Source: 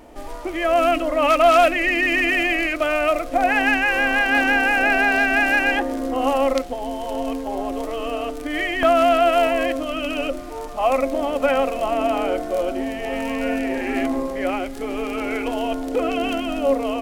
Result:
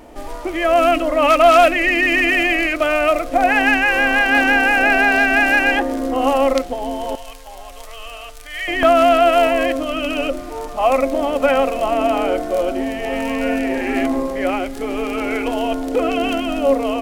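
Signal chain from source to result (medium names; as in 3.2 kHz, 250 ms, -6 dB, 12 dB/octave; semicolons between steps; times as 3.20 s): 7.15–8.68 s: amplifier tone stack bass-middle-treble 10-0-10; trim +3.5 dB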